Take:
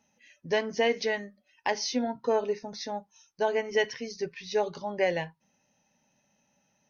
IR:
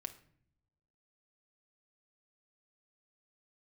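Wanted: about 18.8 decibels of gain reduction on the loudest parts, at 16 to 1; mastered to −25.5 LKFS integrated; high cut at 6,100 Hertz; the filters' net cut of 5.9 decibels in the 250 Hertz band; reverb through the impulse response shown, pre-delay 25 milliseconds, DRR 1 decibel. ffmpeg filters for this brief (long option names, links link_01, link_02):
-filter_complex "[0:a]lowpass=6100,equalizer=frequency=250:width_type=o:gain=-7,acompressor=threshold=-41dB:ratio=16,asplit=2[link_01][link_02];[1:a]atrim=start_sample=2205,adelay=25[link_03];[link_02][link_03]afir=irnorm=-1:irlink=0,volume=2dB[link_04];[link_01][link_04]amix=inputs=2:normalize=0,volume=18.5dB"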